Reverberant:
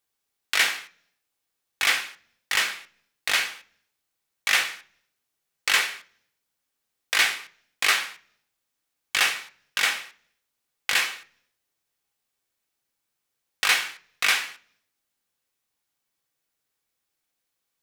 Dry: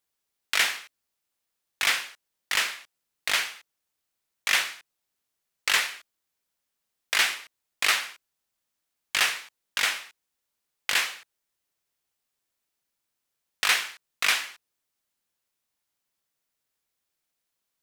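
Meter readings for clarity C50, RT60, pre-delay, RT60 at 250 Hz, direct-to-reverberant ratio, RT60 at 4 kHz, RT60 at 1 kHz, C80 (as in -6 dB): 17.5 dB, 0.50 s, 3 ms, 0.80 s, 5.5 dB, 0.55 s, 0.40 s, 22.5 dB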